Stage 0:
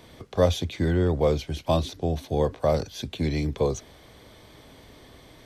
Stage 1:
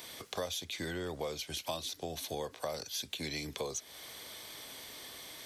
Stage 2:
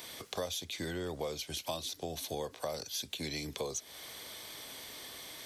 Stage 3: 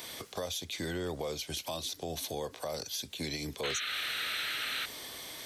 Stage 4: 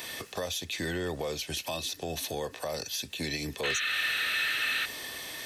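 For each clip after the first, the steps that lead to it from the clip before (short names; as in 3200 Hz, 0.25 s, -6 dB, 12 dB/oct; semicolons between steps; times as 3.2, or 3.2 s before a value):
tilt +4 dB/oct; compressor 5:1, threshold -36 dBFS, peak gain reduction 16 dB
dynamic EQ 1700 Hz, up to -3 dB, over -49 dBFS, Q 0.74; gain +1 dB
limiter -29.5 dBFS, peak gain reduction 10.5 dB; painted sound noise, 3.63–4.86, 1200–4300 Hz -39 dBFS; gain +3 dB
small resonant body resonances 1800/2600 Hz, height 14 dB, ringing for 45 ms; in parallel at -7 dB: soft clip -30.5 dBFS, distortion -13 dB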